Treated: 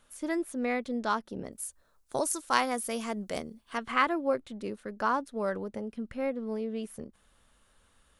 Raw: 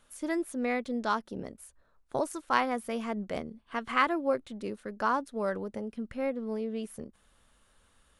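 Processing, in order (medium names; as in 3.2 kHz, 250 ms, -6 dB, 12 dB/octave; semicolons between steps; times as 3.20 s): 1.52–3.78 s: tone controls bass -2 dB, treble +13 dB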